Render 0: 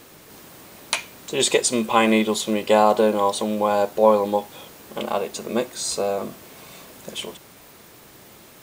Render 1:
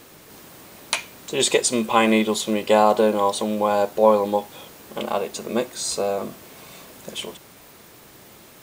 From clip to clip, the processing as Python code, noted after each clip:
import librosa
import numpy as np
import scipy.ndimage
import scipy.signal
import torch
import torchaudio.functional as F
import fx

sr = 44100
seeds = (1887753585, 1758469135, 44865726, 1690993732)

y = x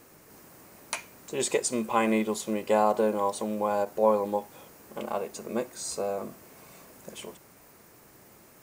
y = fx.peak_eq(x, sr, hz=3500.0, db=-9.5, octaves=0.71)
y = fx.end_taper(y, sr, db_per_s=450.0)
y = F.gain(torch.from_numpy(y), -7.0).numpy()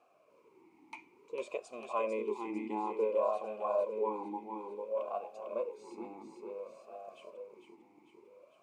y = fx.echo_feedback(x, sr, ms=450, feedback_pct=56, wet_db=-5.0)
y = fx.vowel_sweep(y, sr, vowels='a-u', hz=0.57)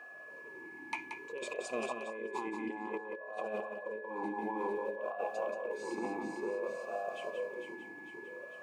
y = fx.over_compress(x, sr, threshold_db=-44.0, ratio=-1.0)
y = y + 10.0 ** (-52.0 / 20.0) * np.sin(2.0 * np.pi * 1700.0 * np.arange(len(y)) / sr)
y = y + 10.0 ** (-7.0 / 20.0) * np.pad(y, (int(179 * sr / 1000.0), 0))[:len(y)]
y = F.gain(torch.from_numpy(y), 3.5).numpy()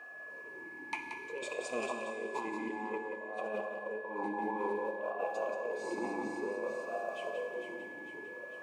y = fx.rev_plate(x, sr, seeds[0], rt60_s=2.5, hf_ratio=0.95, predelay_ms=0, drr_db=5.5)